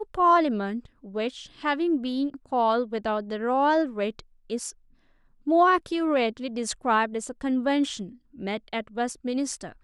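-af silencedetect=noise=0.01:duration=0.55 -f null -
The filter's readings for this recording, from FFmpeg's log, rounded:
silence_start: 4.71
silence_end: 5.47 | silence_duration: 0.76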